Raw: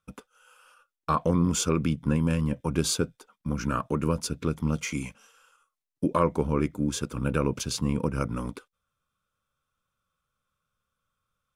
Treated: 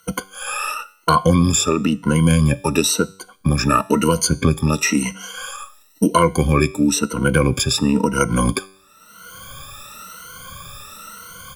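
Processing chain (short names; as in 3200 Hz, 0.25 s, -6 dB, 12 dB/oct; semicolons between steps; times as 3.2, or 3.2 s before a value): moving spectral ripple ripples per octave 1.9, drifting +0.98 Hz, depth 24 dB; high shelf 2800 Hz +8 dB; AGC gain up to 15 dB; resonator 96 Hz, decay 0.49 s, harmonics all, mix 40%; three-band squash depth 70%; gain +4 dB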